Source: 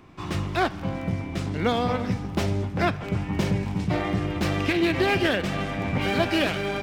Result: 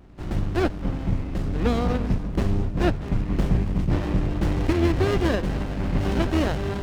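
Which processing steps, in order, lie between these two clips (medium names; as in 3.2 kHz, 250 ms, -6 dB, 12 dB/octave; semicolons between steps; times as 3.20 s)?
octave divider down 2 oct, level +3 dB; vibrato 0.44 Hz 19 cents; sliding maximum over 33 samples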